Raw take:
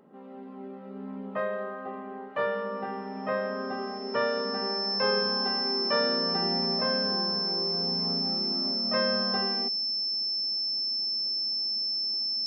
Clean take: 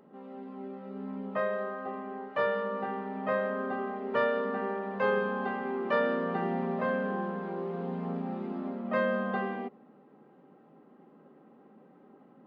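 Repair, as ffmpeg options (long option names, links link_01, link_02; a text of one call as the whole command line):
ffmpeg -i in.wav -af "bandreject=frequency=5300:width=30" out.wav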